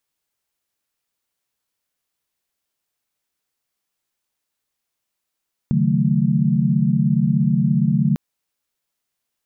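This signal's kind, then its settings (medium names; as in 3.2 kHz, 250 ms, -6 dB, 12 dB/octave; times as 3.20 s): chord C#3/D#3/F#3/A3 sine, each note -20 dBFS 2.45 s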